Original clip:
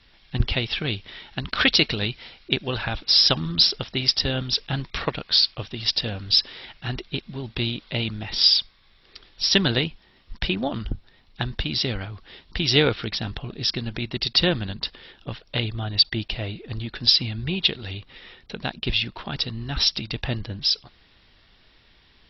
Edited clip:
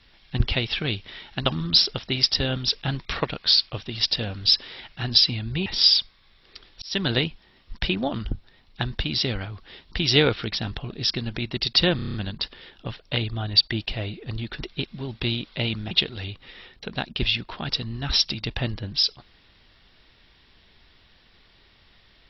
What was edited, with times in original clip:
1.46–3.31 cut
6.95–8.26 swap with 17.02–17.58
9.42–9.76 fade in
14.56 stutter 0.03 s, 7 plays

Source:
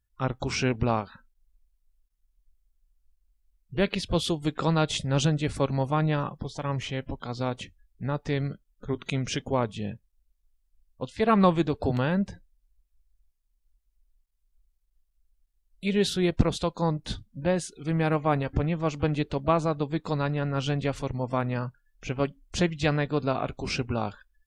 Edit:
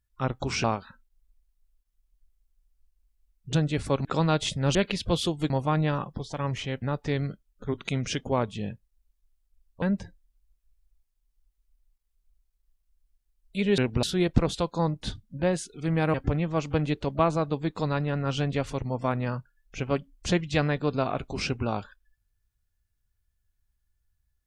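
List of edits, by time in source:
0.64–0.89 move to 16.06
3.78–4.53 swap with 5.23–5.75
7.07–8.03 cut
11.03–12.1 cut
18.17–18.43 cut

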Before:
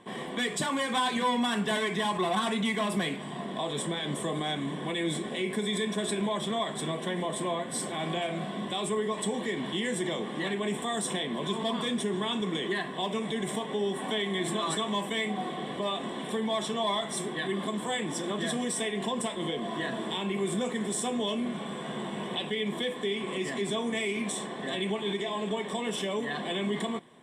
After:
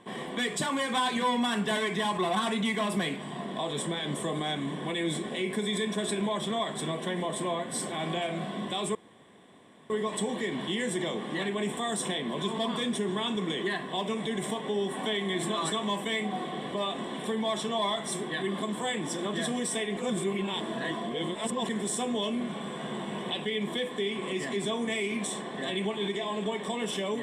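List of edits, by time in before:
8.95 insert room tone 0.95 s
19.02–20.74 reverse

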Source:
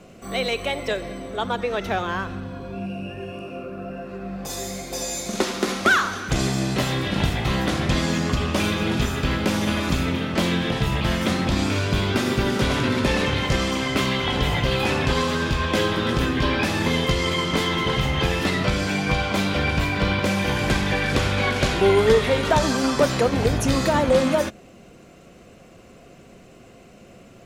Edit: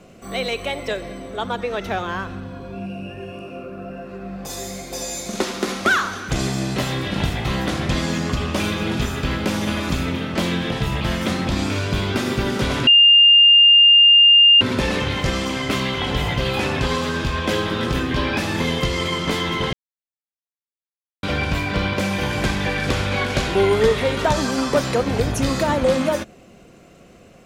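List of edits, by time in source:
12.87 add tone 2810 Hz -7.5 dBFS 1.74 s
17.99–19.49 mute

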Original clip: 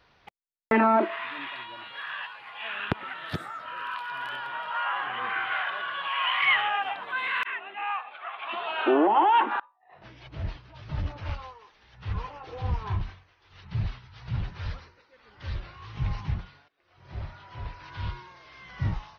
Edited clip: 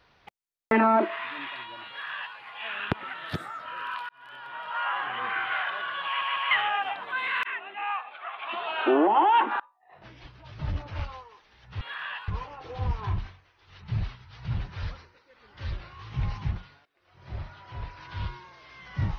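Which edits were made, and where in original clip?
1.89–2.36 copy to 12.11
4.09–4.85 fade in
6.06 stutter in place 0.15 s, 3 plays
10.24–10.54 cut

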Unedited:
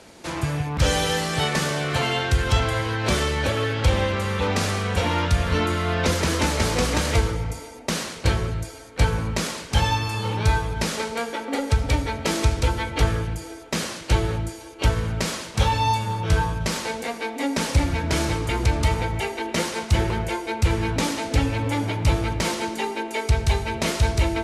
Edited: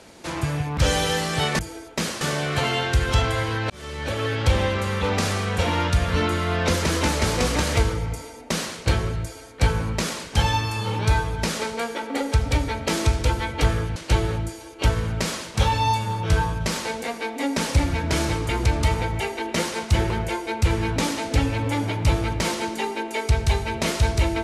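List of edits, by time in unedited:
3.08–3.72 fade in
13.34–13.96 move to 1.59

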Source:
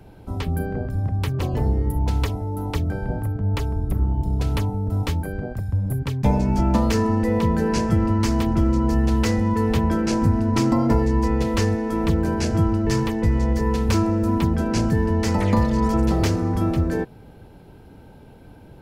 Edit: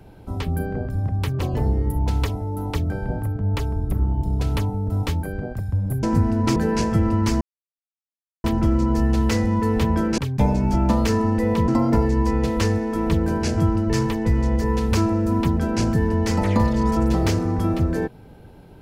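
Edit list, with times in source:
6.03–7.53 swap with 10.12–10.65
8.38 insert silence 1.03 s

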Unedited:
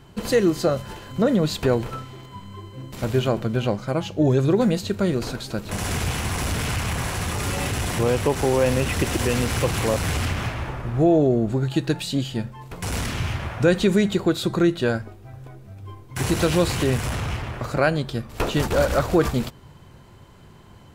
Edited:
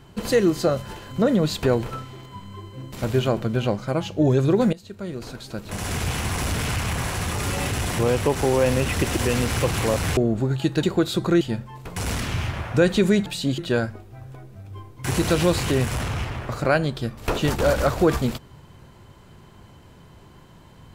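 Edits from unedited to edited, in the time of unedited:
4.73–6.19 fade in, from -19.5 dB
10.17–11.29 cut
11.95–12.27 swap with 14.12–14.7

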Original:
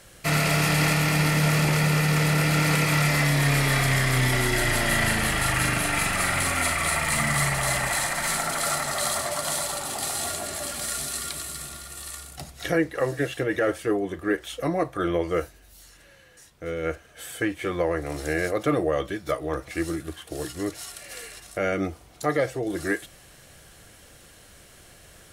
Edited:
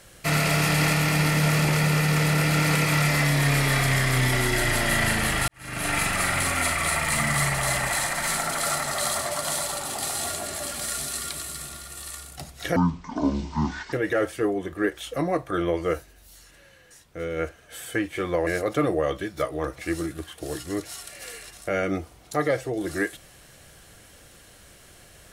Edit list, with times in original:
5.48–5.89 fade in quadratic
12.76–13.39 speed 54%
17.93–18.36 cut

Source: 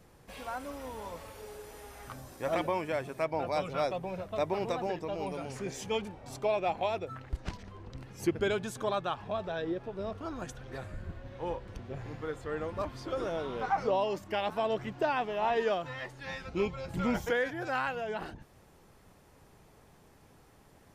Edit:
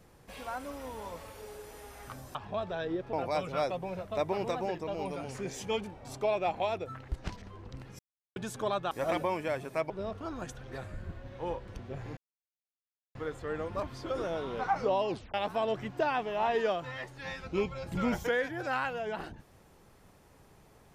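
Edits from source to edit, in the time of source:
2.35–3.34 swap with 9.12–9.9
8.2–8.57 mute
12.17 insert silence 0.98 s
14.11 tape stop 0.25 s

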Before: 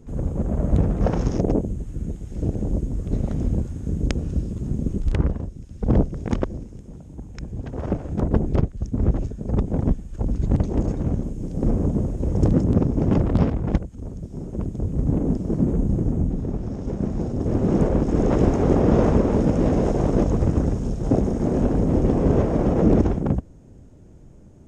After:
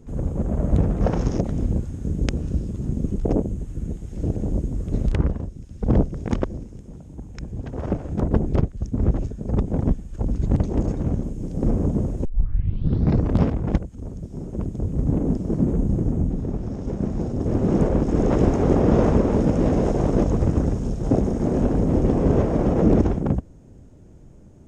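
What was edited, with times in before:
3.26–5.07 move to 1.44
12.25 tape start 1.13 s

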